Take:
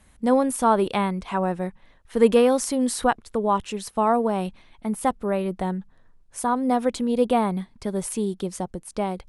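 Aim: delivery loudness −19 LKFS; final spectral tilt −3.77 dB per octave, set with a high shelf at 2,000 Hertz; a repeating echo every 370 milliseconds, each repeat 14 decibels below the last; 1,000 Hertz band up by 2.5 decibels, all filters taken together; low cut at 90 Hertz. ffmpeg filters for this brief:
ffmpeg -i in.wav -af "highpass=90,equalizer=frequency=1000:width_type=o:gain=4.5,highshelf=frequency=2000:gain=-6,aecho=1:1:370|740:0.2|0.0399,volume=4dB" out.wav

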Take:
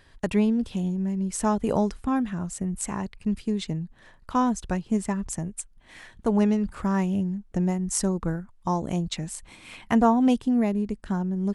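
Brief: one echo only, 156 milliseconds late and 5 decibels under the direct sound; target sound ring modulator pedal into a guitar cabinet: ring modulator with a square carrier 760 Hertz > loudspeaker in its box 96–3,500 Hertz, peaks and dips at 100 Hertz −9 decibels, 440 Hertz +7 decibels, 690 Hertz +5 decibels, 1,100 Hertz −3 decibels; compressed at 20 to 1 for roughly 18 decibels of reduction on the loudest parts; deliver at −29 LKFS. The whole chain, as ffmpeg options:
ffmpeg -i in.wav -af "acompressor=threshold=-34dB:ratio=20,aecho=1:1:156:0.562,aeval=exprs='val(0)*sgn(sin(2*PI*760*n/s))':channel_layout=same,highpass=96,equalizer=frequency=100:width_type=q:width=4:gain=-9,equalizer=frequency=440:width_type=q:width=4:gain=7,equalizer=frequency=690:width_type=q:width=4:gain=5,equalizer=frequency=1100:width_type=q:width=4:gain=-3,lowpass=frequency=3500:width=0.5412,lowpass=frequency=3500:width=1.3066,volume=8dB" out.wav

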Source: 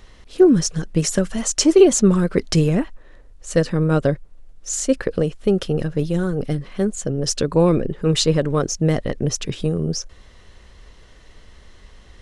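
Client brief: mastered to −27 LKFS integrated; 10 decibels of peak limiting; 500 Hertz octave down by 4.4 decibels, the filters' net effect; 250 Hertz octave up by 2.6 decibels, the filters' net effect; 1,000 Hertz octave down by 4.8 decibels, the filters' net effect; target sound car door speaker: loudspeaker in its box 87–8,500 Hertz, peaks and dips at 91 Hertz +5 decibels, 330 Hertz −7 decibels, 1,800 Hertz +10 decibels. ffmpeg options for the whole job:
ffmpeg -i in.wav -af "equalizer=frequency=250:width_type=o:gain=9,equalizer=frequency=500:width_type=o:gain=-6,equalizer=frequency=1000:width_type=o:gain=-6,alimiter=limit=-10.5dB:level=0:latency=1,highpass=87,equalizer=frequency=91:width_type=q:width=4:gain=5,equalizer=frequency=330:width_type=q:width=4:gain=-7,equalizer=frequency=1800:width_type=q:width=4:gain=10,lowpass=frequency=8500:width=0.5412,lowpass=frequency=8500:width=1.3066,volume=-5dB" out.wav

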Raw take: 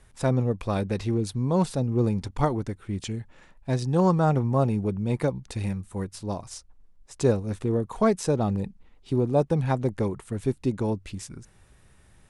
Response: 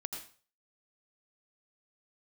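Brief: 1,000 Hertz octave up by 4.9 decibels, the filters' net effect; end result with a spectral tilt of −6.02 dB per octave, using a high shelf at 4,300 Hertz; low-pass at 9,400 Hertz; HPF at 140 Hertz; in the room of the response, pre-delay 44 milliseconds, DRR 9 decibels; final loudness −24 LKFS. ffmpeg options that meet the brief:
-filter_complex "[0:a]highpass=140,lowpass=9400,equalizer=frequency=1000:width_type=o:gain=6.5,highshelf=frequency=4300:gain=-4.5,asplit=2[link_01][link_02];[1:a]atrim=start_sample=2205,adelay=44[link_03];[link_02][link_03]afir=irnorm=-1:irlink=0,volume=-8.5dB[link_04];[link_01][link_04]amix=inputs=2:normalize=0,volume=2dB"

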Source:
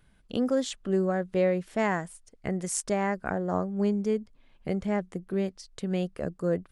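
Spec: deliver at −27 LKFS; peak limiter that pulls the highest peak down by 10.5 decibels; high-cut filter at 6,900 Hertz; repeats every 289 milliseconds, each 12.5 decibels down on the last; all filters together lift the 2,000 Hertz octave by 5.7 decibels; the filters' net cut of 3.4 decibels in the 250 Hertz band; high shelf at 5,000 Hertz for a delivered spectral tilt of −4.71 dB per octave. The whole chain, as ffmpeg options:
ffmpeg -i in.wav -af "lowpass=6900,equalizer=frequency=250:width_type=o:gain=-5,equalizer=frequency=2000:width_type=o:gain=6,highshelf=frequency=5000:gain=6,alimiter=limit=-23dB:level=0:latency=1,aecho=1:1:289|578|867:0.237|0.0569|0.0137,volume=7dB" out.wav

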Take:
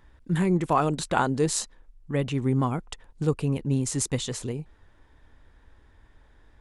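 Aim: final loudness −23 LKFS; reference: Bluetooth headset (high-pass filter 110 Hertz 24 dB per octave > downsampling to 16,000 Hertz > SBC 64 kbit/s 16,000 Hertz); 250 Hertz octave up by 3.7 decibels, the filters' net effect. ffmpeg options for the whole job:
ffmpeg -i in.wav -af "highpass=frequency=110:width=0.5412,highpass=frequency=110:width=1.3066,equalizer=frequency=250:width_type=o:gain=5,aresample=16000,aresample=44100,volume=2dB" -ar 16000 -c:a sbc -b:a 64k out.sbc

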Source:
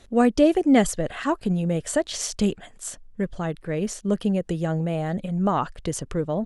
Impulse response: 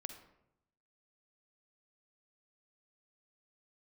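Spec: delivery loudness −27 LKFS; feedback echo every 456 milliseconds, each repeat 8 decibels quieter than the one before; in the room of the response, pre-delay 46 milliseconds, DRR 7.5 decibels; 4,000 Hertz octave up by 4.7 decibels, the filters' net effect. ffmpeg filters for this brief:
-filter_complex "[0:a]equalizer=frequency=4000:width_type=o:gain=6.5,aecho=1:1:456|912|1368|1824|2280:0.398|0.159|0.0637|0.0255|0.0102,asplit=2[link_01][link_02];[1:a]atrim=start_sample=2205,adelay=46[link_03];[link_02][link_03]afir=irnorm=-1:irlink=0,volume=-4dB[link_04];[link_01][link_04]amix=inputs=2:normalize=0,volume=-4.5dB"

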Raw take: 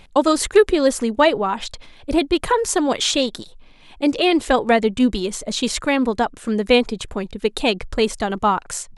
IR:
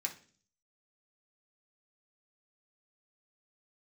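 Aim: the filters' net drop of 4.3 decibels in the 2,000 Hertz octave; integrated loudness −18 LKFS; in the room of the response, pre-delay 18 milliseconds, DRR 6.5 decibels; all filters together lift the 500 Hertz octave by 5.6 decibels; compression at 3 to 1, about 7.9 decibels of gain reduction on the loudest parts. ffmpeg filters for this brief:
-filter_complex "[0:a]equalizer=frequency=500:width_type=o:gain=7,equalizer=frequency=2000:width_type=o:gain=-6,acompressor=threshold=-13dB:ratio=3,asplit=2[link_01][link_02];[1:a]atrim=start_sample=2205,adelay=18[link_03];[link_02][link_03]afir=irnorm=-1:irlink=0,volume=-7.5dB[link_04];[link_01][link_04]amix=inputs=2:normalize=0,volume=1dB"

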